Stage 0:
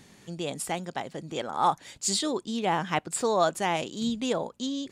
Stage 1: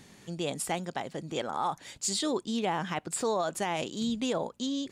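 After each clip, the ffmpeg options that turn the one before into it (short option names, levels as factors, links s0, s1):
-af "alimiter=limit=0.0944:level=0:latency=1:release=69"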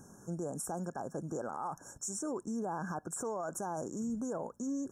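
-af "afftfilt=real='re*(1-between(b*sr/4096,1700,5400))':imag='im*(1-between(b*sr/4096,1700,5400))':win_size=4096:overlap=0.75,alimiter=level_in=1.88:limit=0.0631:level=0:latency=1:release=63,volume=0.531"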